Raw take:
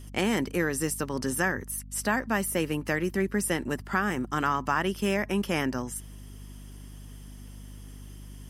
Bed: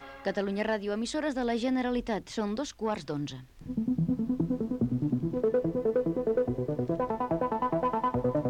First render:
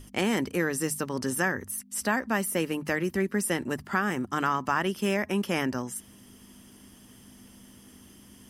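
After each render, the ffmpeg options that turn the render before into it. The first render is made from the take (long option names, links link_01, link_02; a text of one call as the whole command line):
ffmpeg -i in.wav -af "bandreject=frequency=50:width_type=h:width=6,bandreject=frequency=100:width_type=h:width=6,bandreject=frequency=150:width_type=h:width=6" out.wav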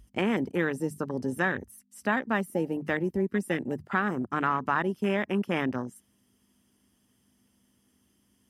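ffmpeg -i in.wav -af "highpass=frequency=42:width=0.5412,highpass=frequency=42:width=1.3066,afwtdn=0.0251" out.wav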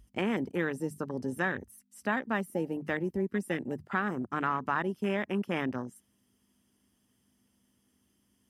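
ffmpeg -i in.wav -af "volume=-3.5dB" out.wav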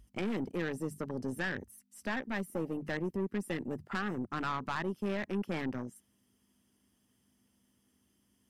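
ffmpeg -i in.wav -af "aeval=exprs='(tanh(25.1*val(0)+0.35)-tanh(0.35))/25.1':channel_layout=same" out.wav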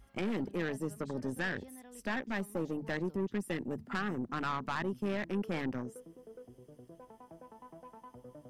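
ffmpeg -i in.wav -i bed.wav -filter_complex "[1:a]volume=-24dB[link_01];[0:a][link_01]amix=inputs=2:normalize=0" out.wav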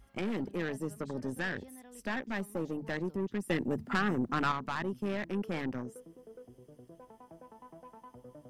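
ffmpeg -i in.wav -filter_complex "[0:a]asettb=1/sr,asplit=3[link_01][link_02][link_03];[link_01]atrim=end=3.494[link_04];[link_02]atrim=start=3.49:end=4.52,asetpts=PTS-STARTPTS,afade=type=in:duration=0.004:curve=qsin,afade=type=out:start_time=1.026:duration=0.004:curve=qsin,acontrast=31[link_05];[link_03]atrim=start=4.516[link_06];[link_04][link_05]acrossfade=duration=0.004:curve1=hsin:curve2=qsin[link_07];[link_07][link_06]acrossfade=duration=0.004:curve1=qsin:curve2=hsin" out.wav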